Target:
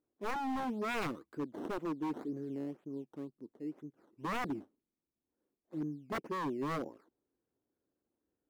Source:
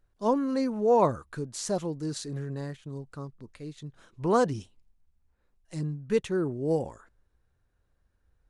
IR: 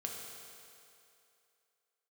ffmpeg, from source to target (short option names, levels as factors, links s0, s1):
-af "acrusher=samples=13:mix=1:aa=0.000001:lfo=1:lforange=13:lforate=2,bandpass=f=300:t=q:w=2.8:csg=0,aemphasis=mode=production:type=bsi,aeval=exprs='0.015*(abs(mod(val(0)/0.015+3,4)-2)-1)':c=same,volume=2"